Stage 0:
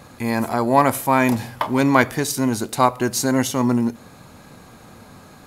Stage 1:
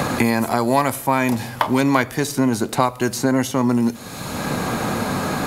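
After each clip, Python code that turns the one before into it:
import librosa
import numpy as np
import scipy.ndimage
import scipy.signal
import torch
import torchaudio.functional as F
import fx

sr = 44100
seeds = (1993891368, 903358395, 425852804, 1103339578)

y = fx.band_squash(x, sr, depth_pct=100)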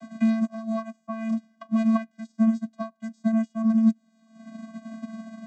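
y = fx.bass_treble(x, sr, bass_db=-2, treble_db=7)
y = fx.vocoder(y, sr, bands=16, carrier='square', carrier_hz=223.0)
y = fx.upward_expand(y, sr, threshold_db=-32.0, expansion=2.5)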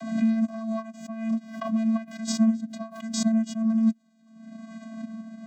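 y = fx.rotary(x, sr, hz=1.2)
y = fx.pre_swell(y, sr, db_per_s=77.0)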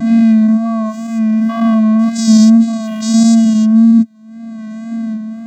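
y = fx.spec_dilate(x, sr, span_ms=240)
y = fx.small_body(y, sr, hz=(230.0, 890.0, 1900.0), ring_ms=45, db=6)
y = fx.wow_flutter(y, sr, seeds[0], rate_hz=2.1, depth_cents=40.0)
y = y * 10.0 ** (5.5 / 20.0)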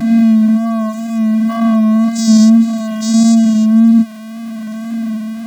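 y = x + 0.5 * 10.0 ** (-25.0 / 20.0) * np.sign(x)
y = y * 10.0 ** (-1.0 / 20.0)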